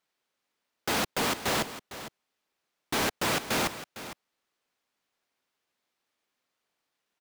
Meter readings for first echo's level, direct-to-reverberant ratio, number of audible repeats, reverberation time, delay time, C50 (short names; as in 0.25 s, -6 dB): -13.5 dB, none, 1, none, 0.456 s, none